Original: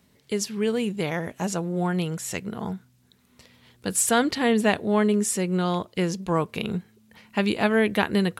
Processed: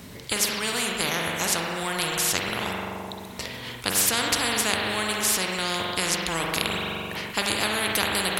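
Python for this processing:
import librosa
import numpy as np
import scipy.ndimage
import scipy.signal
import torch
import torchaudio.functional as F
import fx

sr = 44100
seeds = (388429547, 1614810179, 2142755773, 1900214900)

y = fx.rev_spring(x, sr, rt60_s=1.3, pass_ms=(42,), chirp_ms=25, drr_db=3.0)
y = fx.spectral_comp(y, sr, ratio=4.0)
y = y * librosa.db_to_amplitude(2.0)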